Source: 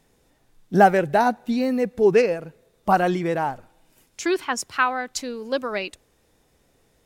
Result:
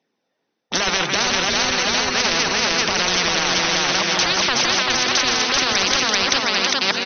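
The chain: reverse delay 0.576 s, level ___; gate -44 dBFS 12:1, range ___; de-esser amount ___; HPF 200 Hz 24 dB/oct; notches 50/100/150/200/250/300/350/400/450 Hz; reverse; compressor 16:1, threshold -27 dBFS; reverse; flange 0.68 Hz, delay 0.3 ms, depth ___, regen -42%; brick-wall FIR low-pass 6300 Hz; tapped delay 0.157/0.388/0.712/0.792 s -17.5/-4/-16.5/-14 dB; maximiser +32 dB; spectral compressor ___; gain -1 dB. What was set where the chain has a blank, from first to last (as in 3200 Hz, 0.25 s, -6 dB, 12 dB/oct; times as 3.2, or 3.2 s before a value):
-12.5 dB, -54 dB, 70%, 3.1 ms, 10:1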